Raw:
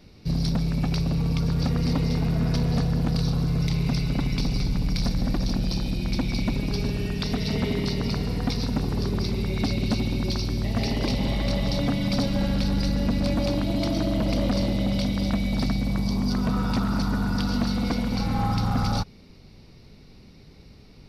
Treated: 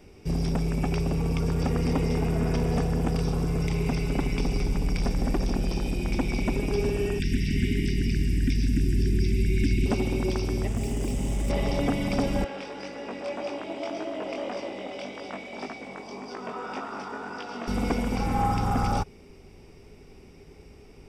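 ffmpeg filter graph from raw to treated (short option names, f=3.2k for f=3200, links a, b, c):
-filter_complex "[0:a]asettb=1/sr,asplit=3[a][b][c];[a]atrim=end=7.194[d];[b]atrim=start=7.19:end=9.86,asetpts=PTS-STARTPTS,afade=t=in:d=0.004:c=qsin,afade=t=out:st=2.666:d=0.004:c=qsin,asuperstop=centerf=760:order=20:qfactor=0.63,lowshelf=f=100:g=8[e];[c]atrim=start=9.856[f];[d][e]acrossfade=d=0.004:c1=hsin:c2=qsin[g];[g][f]acrossfade=d=0.004:c1=qsin:c2=hsin,asettb=1/sr,asplit=3[h][i][j];[h]atrim=end=10.674[k];[i]atrim=start=10.67:end=11.5,asetpts=PTS-STARTPTS,afade=t=in:d=0.004:c=qsin,afade=t=out:st=0.826:d=0.004:c=qsin,highshelf=f=2.9k:g=-11.5,acrusher=bits=5:mix=0:aa=0.5,acrossover=split=270|3000[l][m][n];[m]acompressor=threshold=-44dB:ratio=3:attack=3.2:release=140:knee=2.83:detection=peak[o];[l][o][n]amix=inputs=3:normalize=0[p];[j]atrim=start=11.496[q];[k][p]acrossfade=d=0.004:c1=hsin:c2=qsin[r];[r][q]acrossfade=d=0.004:c1=qsin:c2=hsin,asettb=1/sr,asplit=3[s][t][u];[s]atrim=end=12.444[v];[t]atrim=start=12.44:end=17.68,asetpts=PTS-STARTPTS,afade=t=in:d=0.004:c=qsin,afade=t=out:st=5.236:d=0.004:c=qsin,flanger=delay=18:depth=4.7:speed=1.8,highpass=420,lowpass=4.4k[w];[u]atrim=start=17.676[x];[v][w]acrossfade=d=0.004:c1=hsin:c2=qsin[y];[y][x]acrossfade=d=0.004:c1=qsin:c2=hsin,bandreject=f=4.3k:w=5.9,acrossover=split=4300[z][aa];[aa]acompressor=threshold=-43dB:ratio=4:attack=1:release=60[ab];[z][ab]amix=inputs=2:normalize=0,equalizer=f=125:t=o:w=0.33:g=-9,equalizer=f=200:t=o:w=0.33:g=-5,equalizer=f=400:t=o:w=0.33:g=9,equalizer=f=800:t=o:w=0.33:g=4,equalizer=f=2.5k:t=o:w=0.33:g=3,equalizer=f=4k:t=o:w=0.33:g=-11,equalizer=f=8k:t=o:w=0.33:g=11"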